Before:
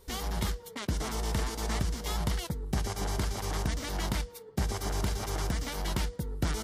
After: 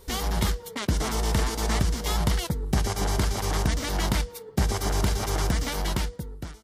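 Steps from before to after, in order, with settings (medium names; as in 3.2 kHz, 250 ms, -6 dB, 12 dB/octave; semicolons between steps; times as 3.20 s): fade out at the end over 0.90 s; 1.68–2.46 s: crackle 56 per s -51 dBFS; trim +6.5 dB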